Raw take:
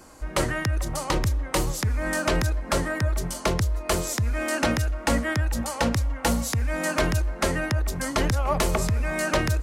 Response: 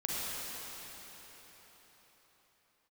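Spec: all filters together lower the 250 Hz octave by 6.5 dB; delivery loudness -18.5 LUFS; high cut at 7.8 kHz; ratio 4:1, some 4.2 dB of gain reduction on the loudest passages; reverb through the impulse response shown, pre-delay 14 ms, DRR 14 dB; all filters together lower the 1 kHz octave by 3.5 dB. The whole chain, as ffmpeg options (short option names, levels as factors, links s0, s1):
-filter_complex "[0:a]lowpass=7800,equalizer=f=250:t=o:g=-9,equalizer=f=1000:t=o:g=-4,acompressor=threshold=0.0501:ratio=4,asplit=2[s0][s1];[1:a]atrim=start_sample=2205,adelay=14[s2];[s1][s2]afir=irnorm=-1:irlink=0,volume=0.1[s3];[s0][s3]amix=inputs=2:normalize=0,volume=3.98"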